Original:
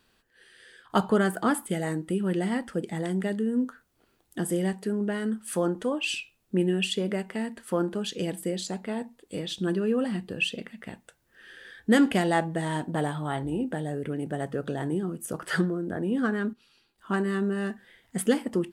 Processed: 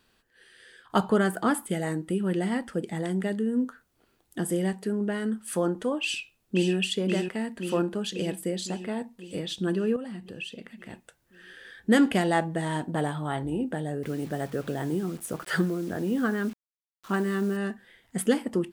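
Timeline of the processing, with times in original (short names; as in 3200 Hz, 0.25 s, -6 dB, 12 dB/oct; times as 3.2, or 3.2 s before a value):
6.02–6.75 echo throw 0.53 s, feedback 65%, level -5.5 dB
9.96–10.9 compressor 2:1, threshold -41 dBFS
14.03–17.57 requantised 8-bit, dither none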